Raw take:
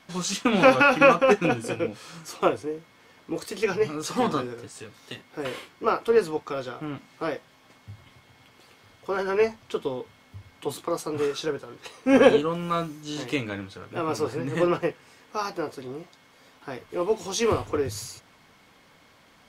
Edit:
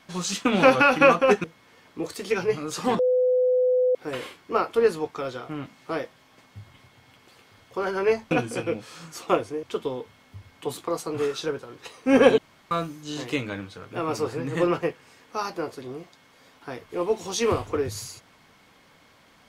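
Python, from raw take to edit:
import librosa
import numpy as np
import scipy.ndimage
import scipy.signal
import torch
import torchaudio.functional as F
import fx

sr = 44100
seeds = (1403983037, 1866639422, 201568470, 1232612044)

y = fx.edit(x, sr, fx.move(start_s=1.44, length_s=1.32, to_s=9.63),
    fx.bleep(start_s=4.31, length_s=0.96, hz=504.0, db=-17.5),
    fx.room_tone_fill(start_s=12.38, length_s=0.33), tone=tone)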